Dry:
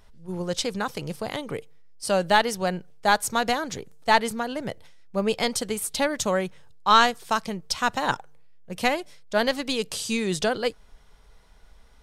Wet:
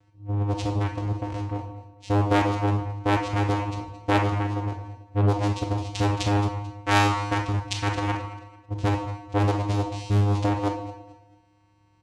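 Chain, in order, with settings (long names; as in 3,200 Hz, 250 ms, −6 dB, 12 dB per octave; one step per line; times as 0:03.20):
0:05.91–0:08.00: high-shelf EQ 3,400 Hz +11 dB
channel vocoder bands 4, square 102 Hz
repeating echo 220 ms, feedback 32%, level −15.5 dB
convolution reverb RT60 0.75 s, pre-delay 19 ms, DRR 3 dB
highs frequency-modulated by the lows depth 0.64 ms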